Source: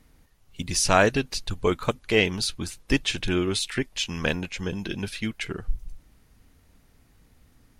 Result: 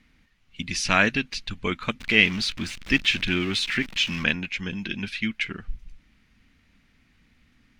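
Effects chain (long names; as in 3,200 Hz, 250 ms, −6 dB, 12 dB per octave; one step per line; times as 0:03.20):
0:02.00–0:04.24: converter with a step at zero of −31 dBFS
drawn EQ curve 130 Hz 0 dB, 220 Hz +8 dB, 420 Hz −3 dB, 860 Hz −1 dB, 2,300 Hz +13 dB, 6,000 Hz +1 dB, 11,000 Hz −10 dB
level −5.5 dB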